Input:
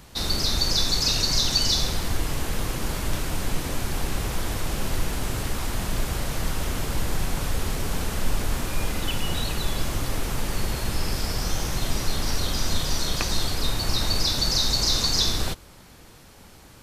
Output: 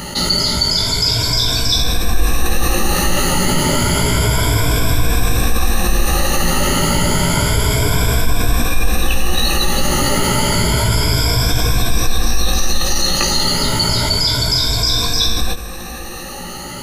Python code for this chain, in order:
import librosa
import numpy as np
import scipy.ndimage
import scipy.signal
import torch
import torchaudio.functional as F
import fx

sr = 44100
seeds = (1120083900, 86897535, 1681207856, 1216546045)

y = fx.spec_ripple(x, sr, per_octave=1.7, drift_hz=0.3, depth_db=18)
y = fx.rider(y, sr, range_db=10, speed_s=0.5)
y = fx.doubler(y, sr, ms=17.0, db=-4.5)
y = fx.env_flatten(y, sr, amount_pct=50)
y = y * librosa.db_to_amplitude(-1.5)